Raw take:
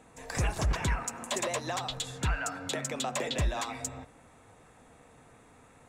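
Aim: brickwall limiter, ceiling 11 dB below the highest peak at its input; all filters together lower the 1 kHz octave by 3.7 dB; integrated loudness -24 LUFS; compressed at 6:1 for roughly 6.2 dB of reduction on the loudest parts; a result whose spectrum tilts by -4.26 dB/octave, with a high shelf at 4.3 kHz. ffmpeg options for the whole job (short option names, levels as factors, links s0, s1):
-af "equalizer=f=1000:t=o:g=-4.5,highshelf=f=4300:g=-8,acompressor=threshold=0.0282:ratio=6,volume=9.44,alimiter=limit=0.168:level=0:latency=1"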